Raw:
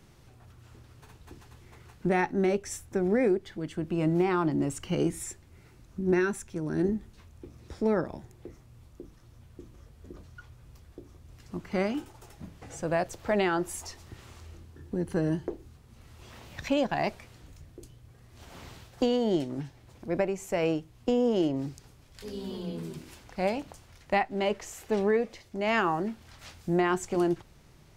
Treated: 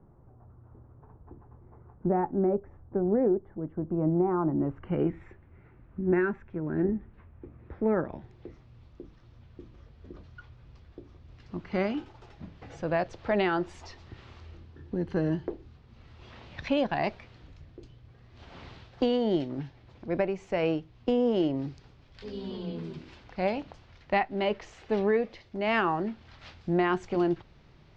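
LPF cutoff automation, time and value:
LPF 24 dB/oct
4.36 s 1100 Hz
5.04 s 2100 Hz
7.94 s 2100 Hz
8.34 s 4500 Hz

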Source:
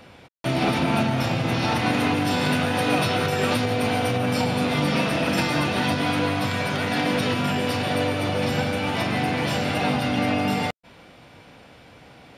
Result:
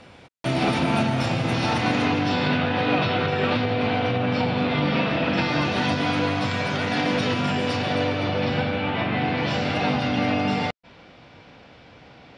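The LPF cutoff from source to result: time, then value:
LPF 24 dB/oct
1.63 s 9400 Hz
2.61 s 4100 Hz
5.33 s 4100 Hz
5.77 s 6900 Hz
7.71 s 6900 Hz
9.07 s 3300 Hz
9.59 s 5800 Hz

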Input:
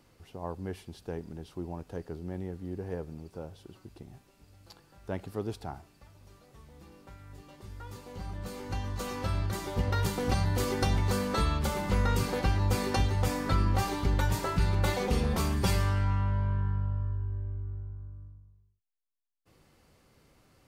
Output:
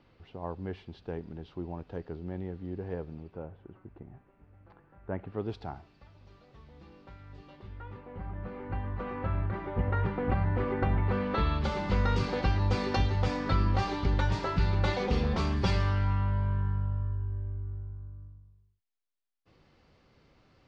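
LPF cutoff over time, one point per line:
LPF 24 dB/oct
3.15 s 4000 Hz
3.57 s 2000 Hz
5.15 s 2000 Hz
5.56 s 4500 Hz
7.47 s 4500 Hz
8.07 s 2200 Hz
10.98 s 2200 Hz
11.74 s 5000 Hz

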